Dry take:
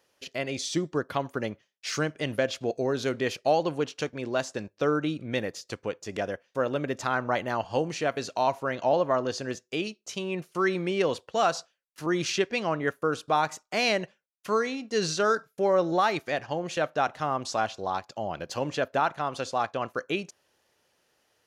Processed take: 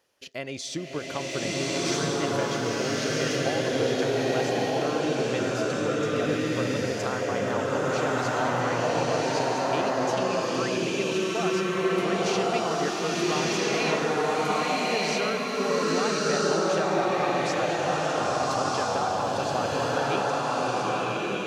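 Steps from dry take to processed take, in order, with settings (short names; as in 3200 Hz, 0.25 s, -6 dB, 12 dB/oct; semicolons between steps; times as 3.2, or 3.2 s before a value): compressor, threshold -26 dBFS, peak gain reduction 8.5 dB; bloom reverb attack 1.33 s, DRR -8 dB; gain -2 dB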